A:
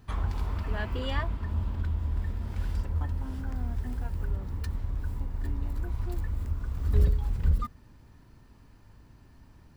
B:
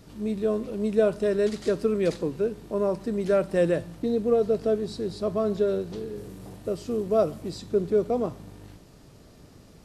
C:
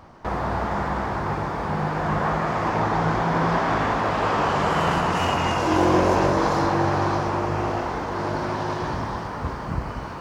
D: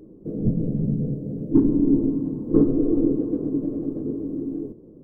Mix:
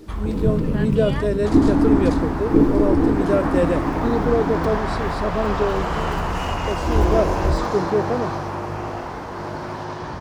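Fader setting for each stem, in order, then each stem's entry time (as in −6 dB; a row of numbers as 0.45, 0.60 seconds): +2.5, +2.0, −3.5, +2.0 decibels; 0.00, 0.00, 1.20, 0.00 seconds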